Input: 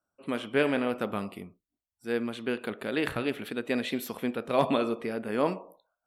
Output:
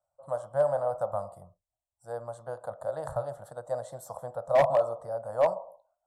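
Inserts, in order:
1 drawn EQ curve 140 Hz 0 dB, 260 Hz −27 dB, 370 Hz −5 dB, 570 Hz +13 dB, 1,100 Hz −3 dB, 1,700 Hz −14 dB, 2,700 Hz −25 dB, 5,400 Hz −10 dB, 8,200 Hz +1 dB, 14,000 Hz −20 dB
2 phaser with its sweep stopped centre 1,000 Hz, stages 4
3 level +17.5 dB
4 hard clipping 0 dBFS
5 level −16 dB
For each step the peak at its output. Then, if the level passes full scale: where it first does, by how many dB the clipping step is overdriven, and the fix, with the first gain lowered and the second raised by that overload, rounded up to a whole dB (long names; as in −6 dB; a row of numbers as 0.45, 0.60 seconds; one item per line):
−4.0, −9.5, +8.0, 0.0, −16.0 dBFS
step 3, 8.0 dB
step 3 +9.5 dB, step 5 −8 dB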